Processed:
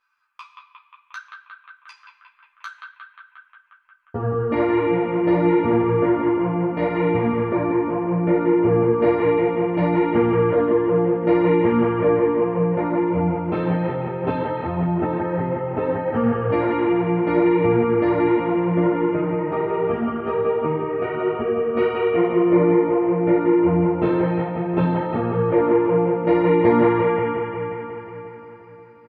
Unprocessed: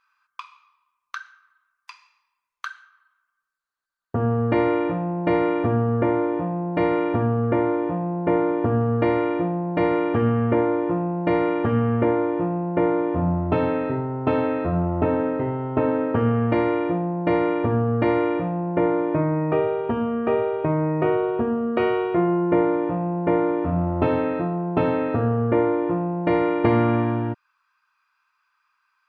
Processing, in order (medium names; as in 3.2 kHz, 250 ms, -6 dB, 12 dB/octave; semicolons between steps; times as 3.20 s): band-stop 1.1 kHz, Q 21; doubling 17 ms -8 dB; bucket-brigade echo 178 ms, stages 4096, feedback 74%, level -4 dB; three-phase chorus